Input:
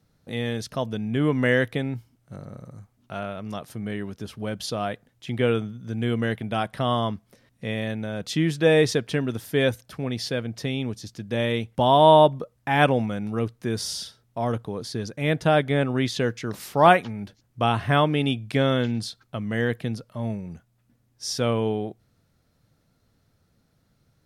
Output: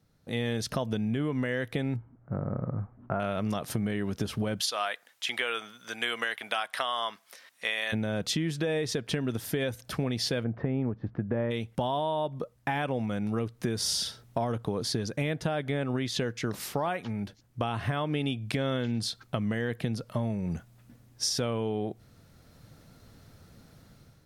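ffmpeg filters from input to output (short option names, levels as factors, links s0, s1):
-filter_complex "[0:a]asettb=1/sr,asplit=3[s0][s1][s2];[s0]atrim=end=1.964[s3];[s1]atrim=start=1.96:end=3.2,asetpts=PTS-STARTPTS,afade=t=in:d=0.004:c=qsin,afade=t=out:st=1.236:d=0.004:c=qsin,lowpass=f=1500:w=0.5412,lowpass=f=1500:w=1.3066[s4];[s2]atrim=start=3.196[s5];[s3][s4]acrossfade=d=0.004:c1=hsin:c2=qsin[s6];[s6][s5]acrossfade=d=0.004:c1=qsin:c2=hsin,asplit=3[s7][s8][s9];[s7]afade=t=out:st=4.59:d=0.02[s10];[s8]highpass=1100,afade=t=in:st=4.59:d=0.02,afade=t=out:st=7.92:d=0.02[s11];[s9]afade=t=in:st=7.92:d=0.02[s12];[s10][s11][s12]amix=inputs=3:normalize=0,asplit=3[s13][s14][s15];[s13]afade=t=out:st=10.43:d=0.02[s16];[s14]lowpass=f=1600:w=0.5412,lowpass=f=1600:w=1.3066,afade=t=in:st=10.43:d=0.02,afade=t=out:st=11.5:d=0.02[s17];[s15]afade=t=in:st=11.5:d=0.02[s18];[s16][s17][s18]amix=inputs=3:normalize=0,dynaudnorm=f=240:g=5:m=5.31,alimiter=limit=0.316:level=0:latency=1:release=207,acompressor=threshold=0.0631:ratio=6,volume=0.75"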